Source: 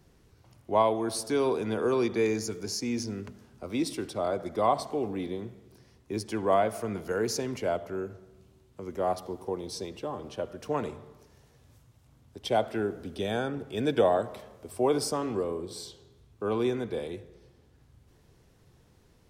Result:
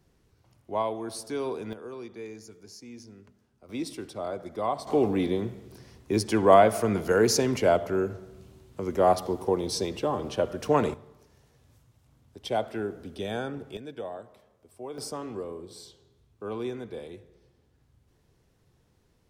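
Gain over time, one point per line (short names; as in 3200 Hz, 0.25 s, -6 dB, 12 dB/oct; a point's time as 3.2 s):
-5 dB
from 1.73 s -14 dB
from 3.69 s -4 dB
from 4.87 s +7.5 dB
from 10.94 s -2 dB
from 13.77 s -14 dB
from 14.98 s -5.5 dB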